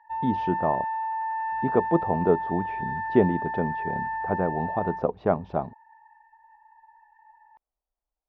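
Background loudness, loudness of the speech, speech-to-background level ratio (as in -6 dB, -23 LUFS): -30.5 LUFS, -27.5 LUFS, 3.0 dB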